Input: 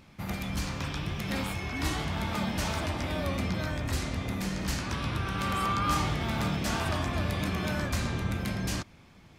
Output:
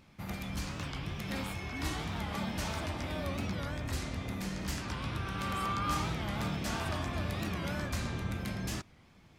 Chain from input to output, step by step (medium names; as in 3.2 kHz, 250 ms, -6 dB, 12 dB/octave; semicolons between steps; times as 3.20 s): warped record 45 rpm, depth 160 cents; trim -5 dB